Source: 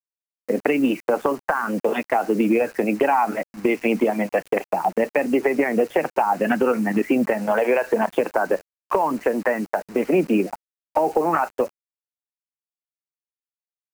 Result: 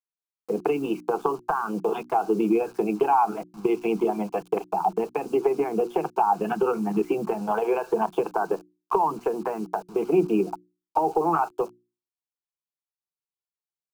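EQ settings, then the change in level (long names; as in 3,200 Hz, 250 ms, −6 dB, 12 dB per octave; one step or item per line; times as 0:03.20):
high-shelf EQ 5,400 Hz −9.5 dB
mains-hum notches 60/120/180/240/300/360 Hz
phaser with its sweep stopped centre 380 Hz, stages 8
0.0 dB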